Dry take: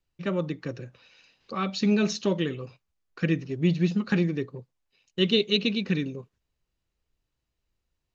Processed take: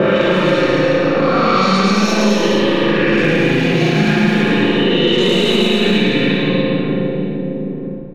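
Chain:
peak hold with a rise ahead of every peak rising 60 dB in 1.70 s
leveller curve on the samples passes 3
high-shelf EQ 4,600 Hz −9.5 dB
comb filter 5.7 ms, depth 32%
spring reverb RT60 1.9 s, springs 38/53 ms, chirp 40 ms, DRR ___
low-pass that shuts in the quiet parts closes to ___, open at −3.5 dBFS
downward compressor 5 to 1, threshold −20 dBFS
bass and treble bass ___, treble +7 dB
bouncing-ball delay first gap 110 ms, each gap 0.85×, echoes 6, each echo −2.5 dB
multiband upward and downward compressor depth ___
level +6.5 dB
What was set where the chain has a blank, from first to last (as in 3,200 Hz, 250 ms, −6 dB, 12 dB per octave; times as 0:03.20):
−5 dB, 530 Hz, −7 dB, 100%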